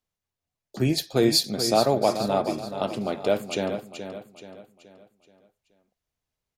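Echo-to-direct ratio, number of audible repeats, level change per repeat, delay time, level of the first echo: −8.5 dB, 4, −7.5 dB, 427 ms, −9.5 dB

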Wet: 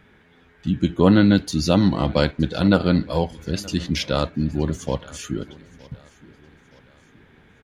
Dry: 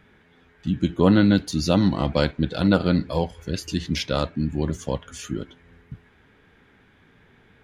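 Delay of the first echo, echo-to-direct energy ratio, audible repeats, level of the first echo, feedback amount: 920 ms, −22.0 dB, 2, −23.0 dB, 45%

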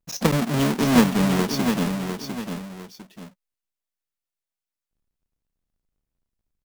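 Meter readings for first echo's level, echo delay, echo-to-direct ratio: −7.0 dB, 702 ms, −6.5 dB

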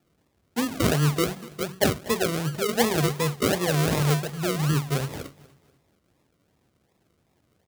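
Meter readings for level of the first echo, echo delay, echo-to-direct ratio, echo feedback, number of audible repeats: −21.0 dB, 242 ms, −20.5 dB, 37%, 2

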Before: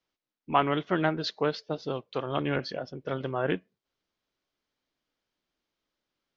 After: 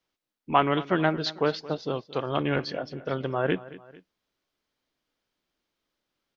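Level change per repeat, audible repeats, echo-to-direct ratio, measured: −6.5 dB, 2, −17.0 dB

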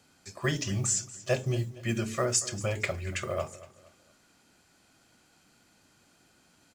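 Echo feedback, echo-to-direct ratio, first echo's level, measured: 36%, −17.5 dB, −18.0 dB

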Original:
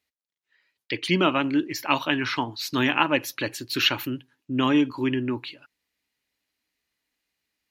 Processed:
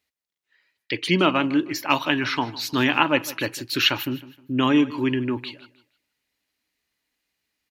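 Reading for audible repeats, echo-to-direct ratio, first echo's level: 2, −17.5 dB, −18.0 dB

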